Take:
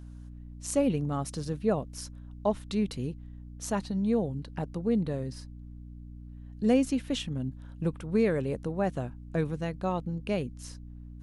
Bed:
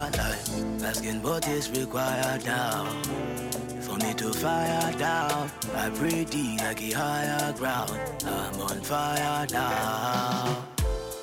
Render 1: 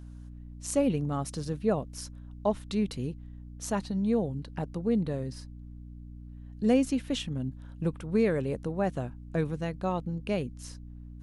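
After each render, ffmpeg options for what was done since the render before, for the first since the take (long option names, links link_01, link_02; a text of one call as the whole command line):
ffmpeg -i in.wav -af anull out.wav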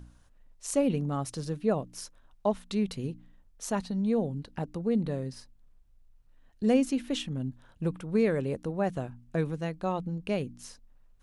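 ffmpeg -i in.wav -af "bandreject=frequency=60:width_type=h:width=4,bandreject=frequency=120:width_type=h:width=4,bandreject=frequency=180:width_type=h:width=4,bandreject=frequency=240:width_type=h:width=4,bandreject=frequency=300:width_type=h:width=4" out.wav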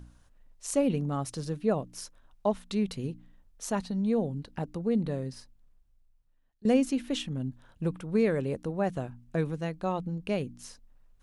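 ffmpeg -i in.wav -filter_complex "[0:a]asplit=2[link_01][link_02];[link_01]atrim=end=6.65,asetpts=PTS-STARTPTS,afade=type=out:start_time=5.34:duration=1.31:silence=0.0891251[link_03];[link_02]atrim=start=6.65,asetpts=PTS-STARTPTS,afade=type=in:duration=0.004:curve=hsin:silence=0.0891251[link_04];[link_03][link_04]concat=n=2:v=0:a=1" out.wav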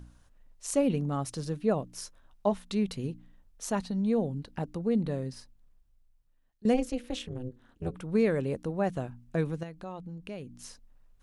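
ffmpeg -i in.wav -filter_complex "[0:a]asettb=1/sr,asplit=3[link_01][link_02][link_03];[link_01]atrim=end=1.924[link_04];[link_02]atrim=start=1.92:end=2.65,asetpts=PTS-STARTPTS,afade=type=in:duration=0.004:curve=qsin,afade=type=out:start_time=0.726:duration=0.004:curve=qsin,asplit=2[link_05][link_06];[link_06]adelay=15,volume=-10.5dB[link_07];[link_05][link_07]amix=inputs=2:normalize=0,atrim=end_sample=32193[link_08];[link_03]atrim=start=2.646[link_09];[link_04][link_08]acrossfade=duration=0.004:curve1=hsin:curve2=qsin[link_10];[link_10][link_09]acrossfade=duration=0.004:curve1=qsin:curve2=hsin,asplit=3[link_11][link_12][link_13];[link_11]afade=type=out:start_time=6.73:duration=0.02[link_14];[link_12]tremolo=f=250:d=1,afade=type=in:start_time=6.73:duration=0.02,afade=type=out:start_time=7.95:duration=0.02[link_15];[link_13]afade=type=in:start_time=7.95:duration=0.02[link_16];[link_14][link_15][link_16]amix=inputs=3:normalize=0,asettb=1/sr,asplit=3[link_17][link_18][link_19];[link_17]atrim=end=9.634[link_20];[link_18]atrim=start=9.63:end=10.58,asetpts=PTS-STARTPTS,afade=type=in:duration=0.004:curve=qsin,afade=type=out:start_time=0.946:duration=0.004:curve=qsin,acompressor=threshold=-44dB:ratio=2:attack=3.2:release=140:knee=1:detection=peak[link_21];[link_19]atrim=start=10.576[link_22];[link_20][link_21]acrossfade=duration=0.004:curve1=hsin:curve2=qsin[link_23];[link_23][link_22]acrossfade=duration=0.004:curve1=qsin:curve2=hsin" out.wav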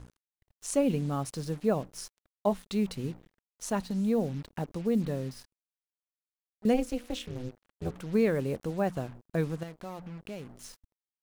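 ffmpeg -i in.wav -af "acrusher=bits=7:mix=0:aa=0.5,aeval=exprs='sgn(val(0))*max(abs(val(0))-0.001,0)':channel_layout=same" out.wav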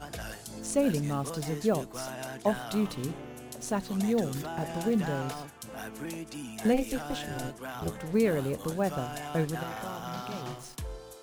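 ffmpeg -i in.wav -i bed.wav -filter_complex "[1:a]volume=-11.5dB[link_01];[0:a][link_01]amix=inputs=2:normalize=0" out.wav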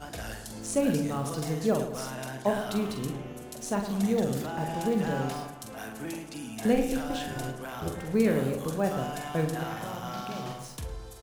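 ffmpeg -i in.wav -filter_complex "[0:a]asplit=2[link_01][link_02];[link_02]adelay=45,volume=-6.5dB[link_03];[link_01][link_03]amix=inputs=2:normalize=0,asplit=2[link_04][link_05];[link_05]adelay=108,lowpass=frequency=1900:poles=1,volume=-8.5dB,asplit=2[link_06][link_07];[link_07]adelay=108,lowpass=frequency=1900:poles=1,volume=0.51,asplit=2[link_08][link_09];[link_09]adelay=108,lowpass=frequency=1900:poles=1,volume=0.51,asplit=2[link_10][link_11];[link_11]adelay=108,lowpass=frequency=1900:poles=1,volume=0.51,asplit=2[link_12][link_13];[link_13]adelay=108,lowpass=frequency=1900:poles=1,volume=0.51,asplit=2[link_14][link_15];[link_15]adelay=108,lowpass=frequency=1900:poles=1,volume=0.51[link_16];[link_04][link_06][link_08][link_10][link_12][link_14][link_16]amix=inputs=7:normalize=0" out.wav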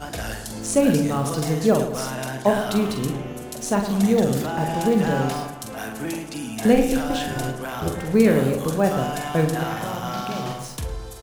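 ffmpeg -i in.wav -af "volume=8dB" out.wav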